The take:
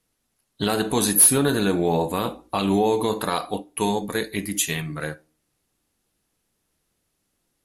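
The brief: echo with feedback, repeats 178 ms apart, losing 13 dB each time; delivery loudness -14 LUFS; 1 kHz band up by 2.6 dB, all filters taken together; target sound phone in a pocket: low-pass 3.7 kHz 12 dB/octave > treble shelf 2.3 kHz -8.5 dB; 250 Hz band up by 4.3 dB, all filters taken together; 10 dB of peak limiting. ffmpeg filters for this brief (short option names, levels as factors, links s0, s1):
-af "equalizer=f=250:t=o:g=5.5,equalizer=f=1000:t=o:g=4.5,alimiter=limit=0.188:level=0:latency=1,lowpass=3700,highshelf=f=2300:g=-8.5,aecho=1:1:178|356|534:0.224|0.0493|0.0108,volume=4.22"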